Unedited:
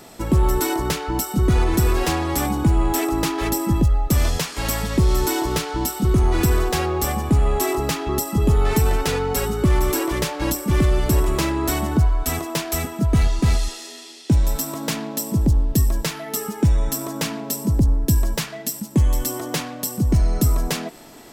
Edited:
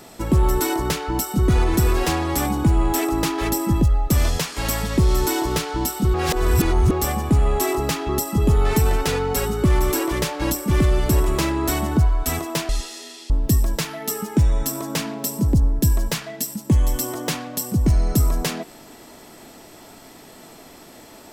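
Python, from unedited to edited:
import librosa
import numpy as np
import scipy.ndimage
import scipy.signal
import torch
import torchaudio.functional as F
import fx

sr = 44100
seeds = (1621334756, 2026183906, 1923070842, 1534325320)

y = fx.edit(x, sr, fx.reverse_span(start_s=6.14, length_s=0.77),
    fx.cut(start_s=12.69, length_s=0.88),
    fx.cut(start_s=14.18, length_s=1.38), tone=tone)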